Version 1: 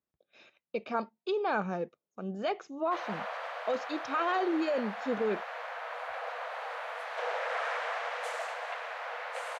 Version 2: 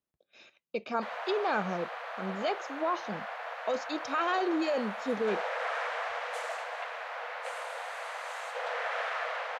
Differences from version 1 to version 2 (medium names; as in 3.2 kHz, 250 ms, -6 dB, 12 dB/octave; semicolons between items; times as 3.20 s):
speech: add treble shelf 4.7 kHz +9.5 dB; background: entry -1.90 s